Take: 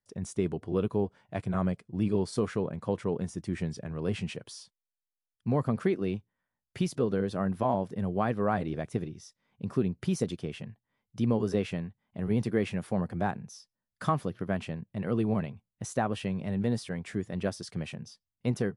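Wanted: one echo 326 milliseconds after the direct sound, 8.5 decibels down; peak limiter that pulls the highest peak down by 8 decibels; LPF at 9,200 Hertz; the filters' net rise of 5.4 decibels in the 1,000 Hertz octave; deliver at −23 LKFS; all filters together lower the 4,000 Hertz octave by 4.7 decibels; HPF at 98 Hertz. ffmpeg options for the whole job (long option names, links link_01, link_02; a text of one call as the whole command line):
ffmpeg -i in.wav -af "highpass=98,lowpass=9200,equalizer=frequency=1000:width_type=o:gain=7.5,equalizer=frequency=4000:width_type=o:gain=-7,alimiter=limit=-18.5dB:level=0:latency=1,aecho=1:1:326:0.376,volume=9.5dB" out.wav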